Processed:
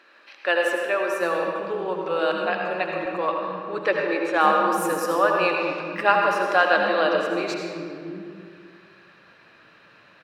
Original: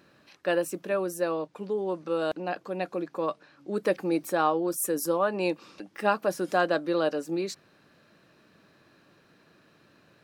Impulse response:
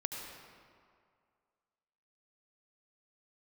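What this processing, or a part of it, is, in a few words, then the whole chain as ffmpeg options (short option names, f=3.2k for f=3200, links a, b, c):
swimming-pool hall: -filter_complex "[1:a]atrim=start_sample=2205[a];[0:a][a]afir=irnorm=-1:irlink=0,highshelf=f=3.4k:g=-7.5,asettb=1/sr,asplit=3[b][c][d];[b]atrim=end=3.294[e];[c]atrim=start=3.29:end=4.41,asetpts=PTS-STARTPTS,afade=t=in:d=0.004:c=qsin,afade=t=out:st=1.116:d=0.004:c=qsin,lowpass=5.6k[f];[d]atrim=start=4.406[g];[e][f]acrossfade=d=0.004:c1=hsin:c2=qsin[h];[h][g]acrossfade=d=0.004:c1=qsin:c2=hsin,equalizer=f=2.3k:t=o:w=2.9:g=13.5,acrossover=split=280[i][j];[i]adelay=740[k];[k][j]amix=inputs=2:normalize=0"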